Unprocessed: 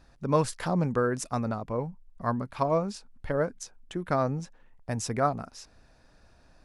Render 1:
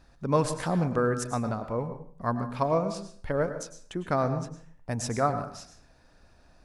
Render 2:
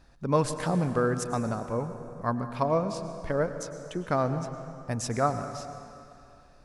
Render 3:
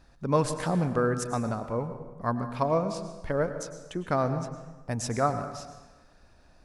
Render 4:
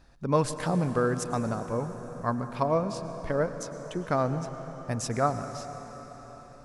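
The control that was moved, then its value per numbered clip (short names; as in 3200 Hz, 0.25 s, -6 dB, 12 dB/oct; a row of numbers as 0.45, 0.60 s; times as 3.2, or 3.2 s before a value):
plate-style reverb, RT60: 0.52, 2.6, 1.2, 5.3 s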